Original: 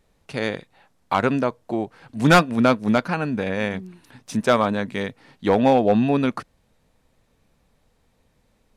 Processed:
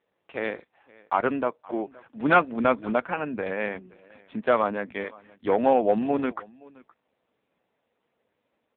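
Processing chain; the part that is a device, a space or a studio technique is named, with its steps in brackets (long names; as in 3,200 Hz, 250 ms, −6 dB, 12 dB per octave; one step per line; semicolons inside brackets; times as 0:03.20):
0:05.03–0:05.51: high-pass filter 270 Hz → 130 Hz 12 dB per octave
satellite phone (band-pass filter 300–3,100 Hz; single-tap delay 521 ms −23.5 dB; level −2 dB; AMR narrowband 5.9 kbit/s 8,000 Hz)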